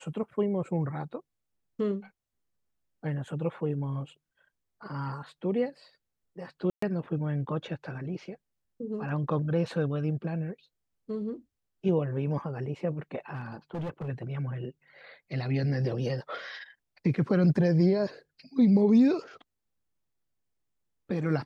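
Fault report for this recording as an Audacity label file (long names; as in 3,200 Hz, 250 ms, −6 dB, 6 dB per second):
6.700000	6.820000	drop-out 124 ms
13.340000	14.090000	clipping −31 dBFS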